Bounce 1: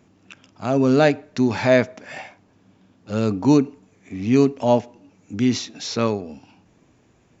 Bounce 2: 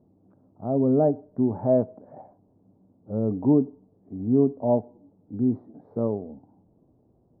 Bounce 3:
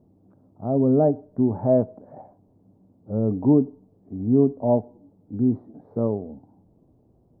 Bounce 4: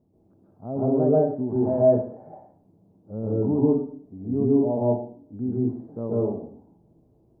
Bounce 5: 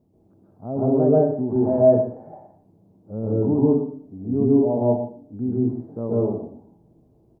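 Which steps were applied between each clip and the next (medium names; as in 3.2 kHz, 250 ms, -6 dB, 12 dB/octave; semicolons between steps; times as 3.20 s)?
inverse Chebyshev low-pass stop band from 2.6 kHz, stop band 60 dB; trim -4 dB
bass shelf 98 Hz +5.5 dB; trim +1.5 dB
plate-style reverb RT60 0.52 s, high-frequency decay 1×, pre-delay 120 ms, DRR -6 dB; trim -8 dB
delay 120 ms -13.5 dB; trim +2.5 dB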